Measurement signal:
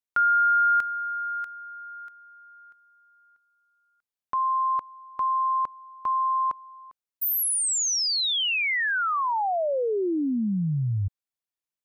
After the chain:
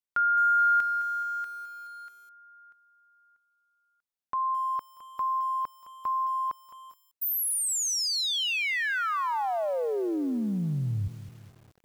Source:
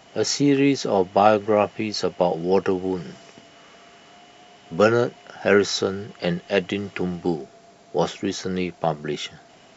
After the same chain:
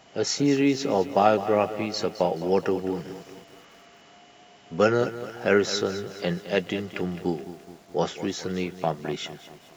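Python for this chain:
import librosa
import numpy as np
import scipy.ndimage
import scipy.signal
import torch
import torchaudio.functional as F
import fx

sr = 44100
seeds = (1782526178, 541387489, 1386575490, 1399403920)

y = fx.echo_crushed(x, sr, ms=212, feedback_pct=55, bits=7, wet_db=-13.0)
y = y * librosa.db_to_amplitude(-3.5)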